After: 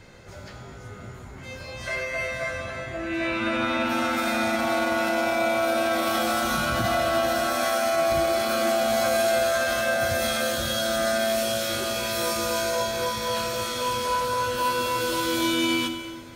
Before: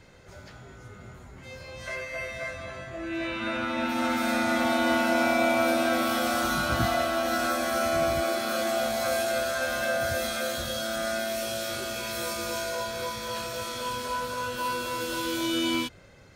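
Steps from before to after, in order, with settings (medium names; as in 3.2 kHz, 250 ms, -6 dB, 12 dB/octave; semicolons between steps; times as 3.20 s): 7.53–8.12 s: high-pass 380 Hz 6 dB/octave; peak limiter -20.5 dBFS, peak gain reduction 8 dB; plate-style reverb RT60 2.3 s, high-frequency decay 0.85×, DRR 6.5 dB; trim +4.5 dB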